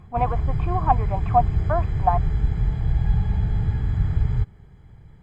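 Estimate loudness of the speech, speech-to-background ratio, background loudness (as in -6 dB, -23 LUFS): -25.5 LUFS, -0.5 dB, -25.0 LUFS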